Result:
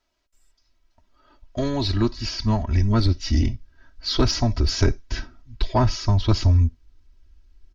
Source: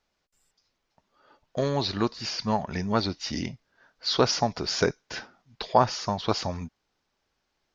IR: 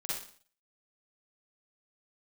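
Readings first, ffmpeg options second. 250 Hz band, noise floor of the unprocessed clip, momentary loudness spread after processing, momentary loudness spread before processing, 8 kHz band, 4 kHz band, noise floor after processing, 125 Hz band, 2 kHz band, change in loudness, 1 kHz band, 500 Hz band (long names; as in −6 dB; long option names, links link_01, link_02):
+5.5 dB, −78 dBFS, 13 LU, 15 LU, can't be measured, +2.0 dB, −69 dBFS, +13.5 dB, −0.5 dB, +5.0 dB, −3.0 dB, −1.0 dB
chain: -filter_complex "[0:a]asubboost=boost=5.5:cutoff=72,aecho=1:1:3.1:0.99,asubboost=boost=8.5:cutoff=220,acontrast=65,asplit=2[link_01][link_02];[1:a]atrim=start_sample=2205,atrim=end_sample=3969[link_03];[link_02][link_03]afir=irnorm=-1:irlink=0,volume=-24dB[link_04];[link_01][link_04]amix=inputs=2:normalize=0,volume=-7.5dB"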